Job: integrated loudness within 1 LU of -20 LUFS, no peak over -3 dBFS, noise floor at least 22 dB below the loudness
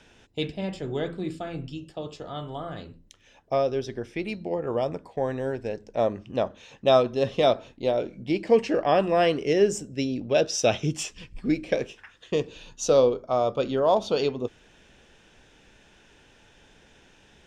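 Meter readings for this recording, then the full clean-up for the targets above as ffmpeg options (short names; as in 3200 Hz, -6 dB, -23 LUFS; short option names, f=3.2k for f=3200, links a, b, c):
loudness -26.0 LUFS; peak -7.5 dBFS; loudness target -20.0 LUFS
-> -af "volume=6dB,alimiter=limit=-3dB:level=0:latency=1"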